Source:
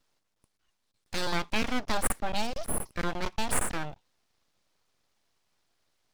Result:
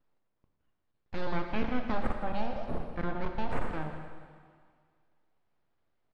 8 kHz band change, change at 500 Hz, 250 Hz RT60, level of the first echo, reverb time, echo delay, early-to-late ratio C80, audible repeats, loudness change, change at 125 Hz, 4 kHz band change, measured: under -30 dB, -0.5 dB, 1.8 s, -14.5 dB, 1.9 s, 0.167 s, 6.0 dB, 1, -4.0 dB, +0.5 dB, -13.5 dB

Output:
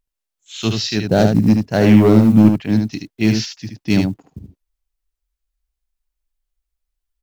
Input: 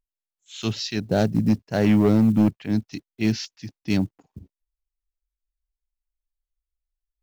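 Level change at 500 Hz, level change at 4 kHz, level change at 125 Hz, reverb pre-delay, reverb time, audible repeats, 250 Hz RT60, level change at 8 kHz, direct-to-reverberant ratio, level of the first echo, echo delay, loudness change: +7.5 dB, +7.5 dB, +8.0 dB, none, none, 1, none, n/a, none, -5.5 dB, 75 ms, +7.5 dB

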